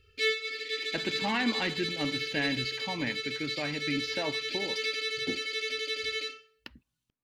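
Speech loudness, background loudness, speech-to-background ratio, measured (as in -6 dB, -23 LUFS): -34.5 LUFS, -32.0 LUFS, -2.5 dB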